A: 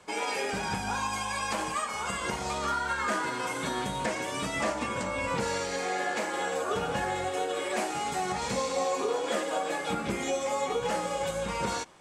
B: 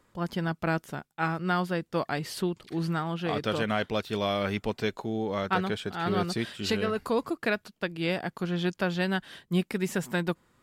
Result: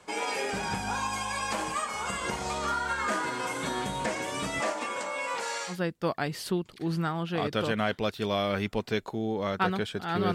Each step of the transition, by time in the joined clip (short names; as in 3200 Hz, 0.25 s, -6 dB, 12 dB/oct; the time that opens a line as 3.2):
A
4.6–5.77 HPF 290 Hz -> 910 Hz
5.72 switch to B from 1.63 s, crossfade 0.10 s